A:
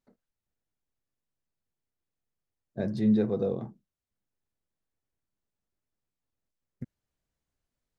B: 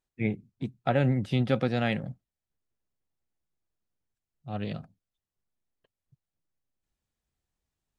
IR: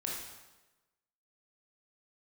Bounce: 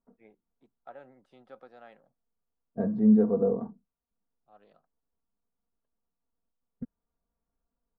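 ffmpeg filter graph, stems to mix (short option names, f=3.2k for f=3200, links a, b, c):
-filter_complex "[0:a]lowpass=1.5k,aecho=1:1:4.3:0.81,volume=-1dB[a];[1:a]highpass=510,volume=-19dB[b];[a][b]amix=inputs=2:normalize=0,highshelf=f=1.7k:t=q:w=1.5:g=-9.5"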